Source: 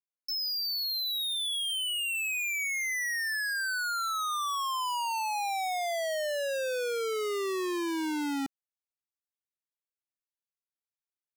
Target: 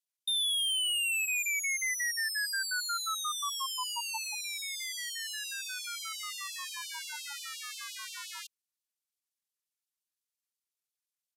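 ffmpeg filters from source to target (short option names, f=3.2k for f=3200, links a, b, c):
-filter_complex "[0:a]asetrate=30296,aresample=44100,atempo=1.45565,acrossover=split=4100[a][b];[b]acontrast=39[c];[a][c]amix=inputs=2:normalize=0,asubboost=boost=11:cutoff=200,afftfilt=real='re*gte(b*sr/1024,820*pow(2700/820,0.5+0.5*sin(2*PI*5.7*pts/sr)))':imag='im*gte(b*sr/1024,820*pow(2700/820,0.5+0.5*sin(2*PI*5.7*pts/sr)))':win_size=1024:overlap=0.75"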